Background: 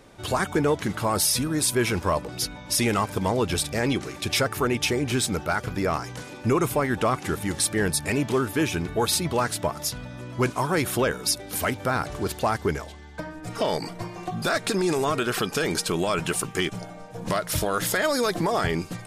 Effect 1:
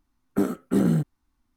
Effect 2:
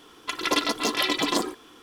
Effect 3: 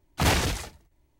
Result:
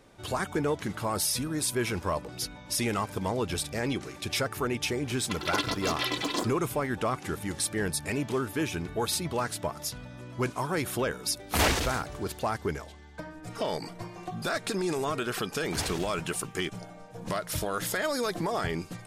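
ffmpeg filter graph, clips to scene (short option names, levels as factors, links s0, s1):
-filter_complex "[3:a]asplit=2[s0][s1];[0:a]volume=0.501[s2];[s0]equalizer=f=130:t=o:w=0.77:g=-12[s3];[2:a]atrim=end=1.82,asetpts=PTS-STARTPTS,volume=0.501,afade=t=in:d=0.004:c=hsin,afade=t=out:st=1.816:d=0.004:c=hsin,adelay=5020[s4];[s3]atrim=end=1.19,asetpts=PTS-STARTPTS,volume=0.891,afade=t=in:d=0.004:c=hsin,afade=t=out:st=1.186:d=0.004:c=hsin,adelay=11340[s5];[s1]atrim=end=1.19,asetpts=PTS-STARTPTS,volume=0.237,afade=t=in:d=0.004:c=hsin,afade=t=out:st=1.186:d=0.004:c=hsin,adelay=15530[s6];[s2][s4][s5][s6]amix=inputs=4:normalize=0"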